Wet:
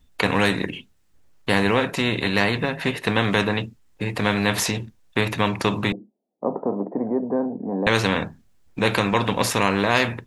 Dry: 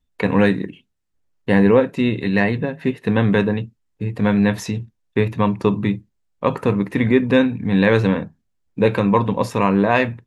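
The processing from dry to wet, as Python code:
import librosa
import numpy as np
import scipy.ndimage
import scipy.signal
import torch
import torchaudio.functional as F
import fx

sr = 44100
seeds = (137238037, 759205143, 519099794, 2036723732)

y = fx.ellip_bandpass(x, sr, low_hz=220.0, high_hz=720.0, order=3, stop_db=60, at=(5.92, 7.87))
y = fx.spectral_comp(y, sr, ratio=2.0)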